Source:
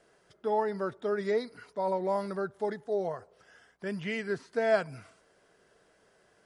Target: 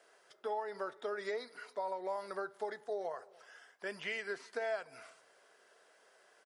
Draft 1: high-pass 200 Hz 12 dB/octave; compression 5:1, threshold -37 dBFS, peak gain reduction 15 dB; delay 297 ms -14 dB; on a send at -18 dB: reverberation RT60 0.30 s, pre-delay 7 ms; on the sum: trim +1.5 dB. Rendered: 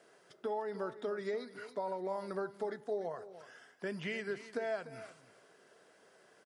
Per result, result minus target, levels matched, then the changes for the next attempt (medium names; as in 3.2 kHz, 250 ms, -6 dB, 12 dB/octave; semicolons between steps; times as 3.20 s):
250 Hz band +7.5 dB; echo-to-direct +4.5 dB
change: high-pass 550 Hz 12 dB/octave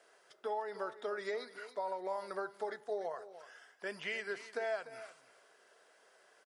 echo-to-direct +4.5 dB
change: delay 297 ms -24.5 dB